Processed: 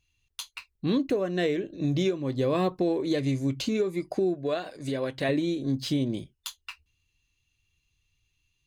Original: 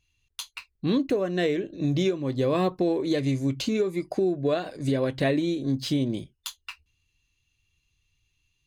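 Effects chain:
0:04.34–0:05.29: low-shelf EQ 340 Hz −7.5 dB
level −1.5 dB

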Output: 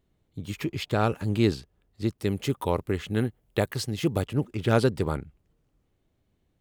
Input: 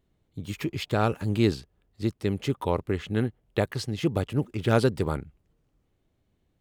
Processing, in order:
0:02.18–0:04.26: high-shelf EQ 8,200 Hz +10.5 dB

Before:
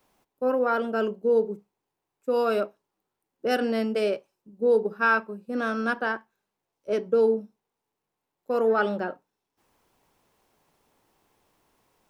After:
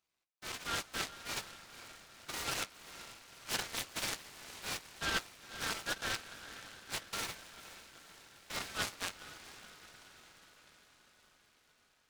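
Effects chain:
adaptive Wiener filter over 25 samples
inverse Chebyshev high-pass filter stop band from 480 Hz, stop band 70 dB
reversed playback
downward compressor 6 to 1, threshold −50 dBFS, peak gain reduction 17.5 dB
reversed playback
flanger 1 Hz, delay 6.7 ms, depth 5.1 ms, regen +53%
automatic gain control gain up to 8.5 dB
feedback delay with all-pass diffusion 482 ms, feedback 63%, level −13 dB
short delay modulated by noise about 1,700 Hz, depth 0.092 ms
level +11.5 dB

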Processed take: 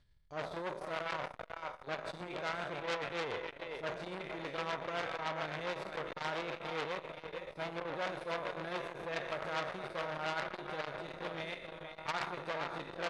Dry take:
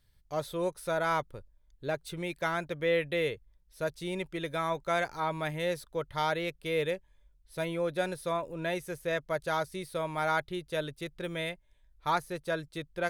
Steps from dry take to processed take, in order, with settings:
peak hold with a decay on every bin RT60 0.95 s
reversed playback
upward compression, threshold −40 dBFS
reversed playback
high-frequency loss of the air 99 metres
on a send: feedback echo with a high-pass in the loop 475 ms, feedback 37%, high-pass 410 Hz, level −5.5 dB
on the sum: amplitude tremolo 7.2 Hz, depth 51%
slap from a distant wall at 290 metres, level −10 dB
saturating transformer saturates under 3,100 Hz
level −2.5 dB

